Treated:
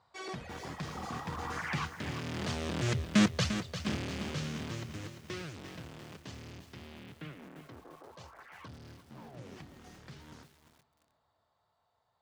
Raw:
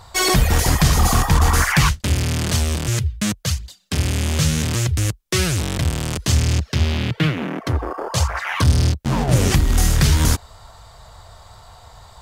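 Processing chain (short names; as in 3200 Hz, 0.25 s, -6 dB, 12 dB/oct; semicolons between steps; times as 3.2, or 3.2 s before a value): Doppler pass-by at 3.23, 7 m/s, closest 1.8 m; BPF 170–5000 Hz; high shelf 2400 Hz -5.5 dB; on a send: dark delay 0.359 s, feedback 34%, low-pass 3200 Hz, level -20 dB; on the sum: lo-fi delay 0.347 s, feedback 55%, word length 9-bit, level -9 dB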